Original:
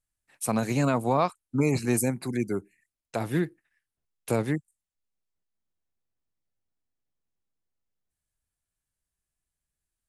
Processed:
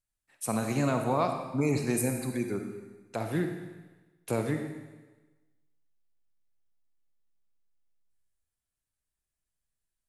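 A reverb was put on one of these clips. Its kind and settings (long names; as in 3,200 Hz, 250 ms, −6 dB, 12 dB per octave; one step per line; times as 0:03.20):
comb and all-pass reverb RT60 1.2 s, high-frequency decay 1×, pre-delay 10 ms, DRR 4.5 dB
level −4 dB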